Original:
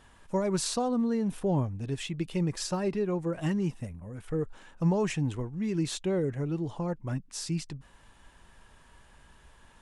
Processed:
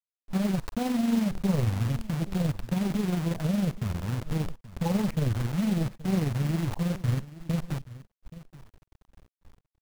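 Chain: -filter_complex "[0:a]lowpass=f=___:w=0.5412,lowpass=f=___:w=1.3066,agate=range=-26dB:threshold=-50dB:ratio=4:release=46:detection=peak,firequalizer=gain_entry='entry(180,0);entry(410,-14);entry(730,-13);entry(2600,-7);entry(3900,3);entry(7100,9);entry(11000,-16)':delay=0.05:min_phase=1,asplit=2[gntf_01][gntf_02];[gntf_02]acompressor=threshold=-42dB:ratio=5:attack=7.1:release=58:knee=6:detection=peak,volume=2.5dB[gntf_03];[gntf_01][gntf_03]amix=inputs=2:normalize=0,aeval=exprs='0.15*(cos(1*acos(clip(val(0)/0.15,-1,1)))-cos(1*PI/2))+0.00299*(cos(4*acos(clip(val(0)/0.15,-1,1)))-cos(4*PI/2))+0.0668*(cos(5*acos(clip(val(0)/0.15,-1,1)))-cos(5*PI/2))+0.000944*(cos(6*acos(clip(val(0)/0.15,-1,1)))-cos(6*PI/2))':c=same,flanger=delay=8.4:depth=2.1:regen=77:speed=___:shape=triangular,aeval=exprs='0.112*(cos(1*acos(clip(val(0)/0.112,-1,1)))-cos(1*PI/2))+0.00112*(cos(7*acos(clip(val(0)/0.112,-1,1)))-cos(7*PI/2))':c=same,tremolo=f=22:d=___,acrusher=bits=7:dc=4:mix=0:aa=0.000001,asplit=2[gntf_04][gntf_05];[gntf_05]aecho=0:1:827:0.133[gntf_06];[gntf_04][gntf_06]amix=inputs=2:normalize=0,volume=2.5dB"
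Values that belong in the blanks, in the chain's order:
1.1k, 1.1k, 1.7, 0.571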